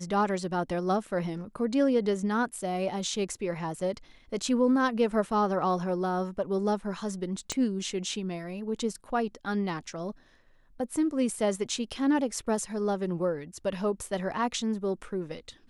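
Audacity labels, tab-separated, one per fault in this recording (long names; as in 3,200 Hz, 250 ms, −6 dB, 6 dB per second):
7.520000	7.520000	click −16 dBFS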